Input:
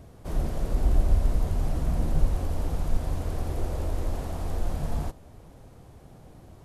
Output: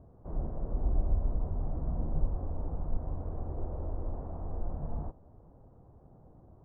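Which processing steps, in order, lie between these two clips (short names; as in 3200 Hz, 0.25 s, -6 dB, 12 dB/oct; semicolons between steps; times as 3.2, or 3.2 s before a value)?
LPF 1100 Hz 24 dB/oct; gain -7 dB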